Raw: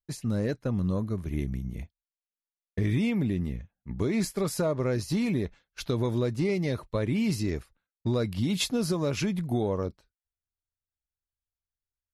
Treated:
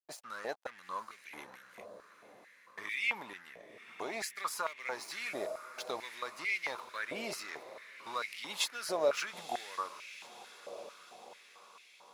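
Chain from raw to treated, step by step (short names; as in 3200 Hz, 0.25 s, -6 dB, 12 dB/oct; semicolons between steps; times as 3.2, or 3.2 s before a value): crossover distortion -47 dBFS; diffused feedback echo 0.929 s, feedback 56%, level -13 dB; stepped high-pass 4.5 Hz 640–2200 Hz; gain -3.5 dB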